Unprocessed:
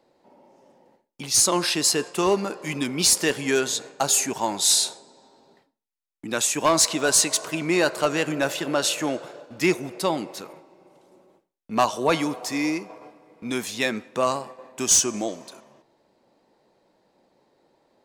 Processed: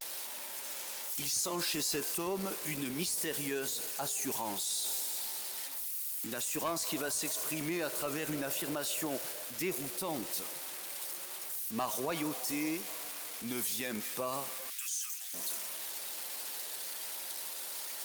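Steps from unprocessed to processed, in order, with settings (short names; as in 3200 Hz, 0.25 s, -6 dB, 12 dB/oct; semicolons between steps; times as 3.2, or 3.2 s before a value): switching spikes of -18 dBFS; 2.33–2.82 upward compressor, threshold -28 dBFS; 6.33–7.02 dynamic EQ 9500 Hz, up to -3 dB, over -32 dBFS, Q 2.7; 14.69–15.35 HPF 1500 Hz 24 dB/oct; limiter -18.5 dBFS, peak gain reduction 12 dB; vibrato 0.35 Hz 50 cents; gain -7.5 dB; Opus 32 kbps 48000 Hz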